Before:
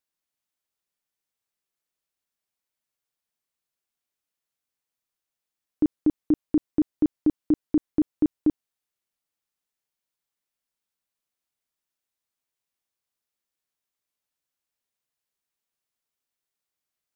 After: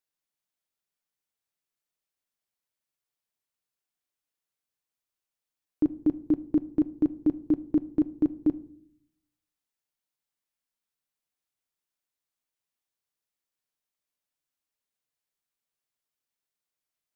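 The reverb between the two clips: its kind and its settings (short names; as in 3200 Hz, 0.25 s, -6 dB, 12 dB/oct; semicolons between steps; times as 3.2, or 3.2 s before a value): shoebox room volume 1000 m³, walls furnished, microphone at 0.44 m; gain -3 dB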